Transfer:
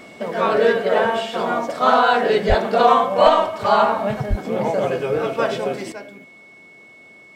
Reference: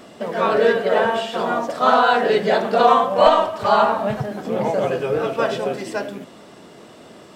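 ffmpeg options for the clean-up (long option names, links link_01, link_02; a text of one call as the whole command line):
ffmpeg -i in.wav -filter_complex "[0:a]bandreject=frequency=2200:width=30,asplit=3[link_01][link_02][link_03];[link_01]afade=type=out:start_time=2.48:duration=0.02[link_04];[link_02]highpass=frequency=140:width=0.5412,highpass=frequency=140:width=1.3066,afade=type=in:start_time=2.48:duration=0.02,afade=type=out:start_time=2.6:duration=0.02[link_05];[link_03]afade=type=in:start_time=2.6:duration=0.02[link_06];[link_04][link_05][link_06]amix=inputs=3:normalize=0,asplit=3[link_07][link_08][link_09];[link_07]afade=type=out:start_time=4.29:duration=0.02[link_10];[link_08]highpass=frequency=140:width=0.5412,highpass=frequency=140:width=1.3066,afade=type=in:start_time=4.29:duration=0.02,afade=type=out:start_time=4.41:duration=0.02[link_11];[link_09]afade=type=in:start_time=4.41:duration=0.02[link_12];[link_10][link_11][link_12]amix=inputs=3:normalize=0,asetnsamples=nb_out_samples=441:pad=0,asendcmd='5.92 volume volume 10dB',volume=0dB" out.wav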